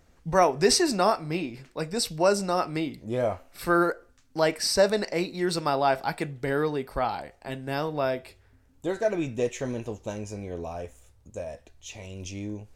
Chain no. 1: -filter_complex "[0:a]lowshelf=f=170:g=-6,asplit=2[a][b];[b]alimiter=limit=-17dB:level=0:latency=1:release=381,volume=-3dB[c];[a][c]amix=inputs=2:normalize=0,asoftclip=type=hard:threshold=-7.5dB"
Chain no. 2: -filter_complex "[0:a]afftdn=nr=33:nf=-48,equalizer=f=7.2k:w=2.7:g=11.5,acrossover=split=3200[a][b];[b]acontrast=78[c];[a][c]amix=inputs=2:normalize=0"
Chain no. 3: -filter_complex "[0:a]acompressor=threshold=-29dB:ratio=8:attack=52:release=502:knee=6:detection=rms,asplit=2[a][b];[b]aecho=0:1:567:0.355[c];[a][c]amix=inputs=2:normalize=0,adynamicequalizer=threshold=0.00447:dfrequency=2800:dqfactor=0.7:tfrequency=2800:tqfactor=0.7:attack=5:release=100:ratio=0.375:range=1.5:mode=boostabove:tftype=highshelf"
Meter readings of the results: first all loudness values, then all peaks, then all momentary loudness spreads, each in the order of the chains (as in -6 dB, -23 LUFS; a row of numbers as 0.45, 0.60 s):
-24.5, -23.5, -34.0 LUFS; -7.5, -2.5, -16.0 dBFS; 15, 19, 9 LU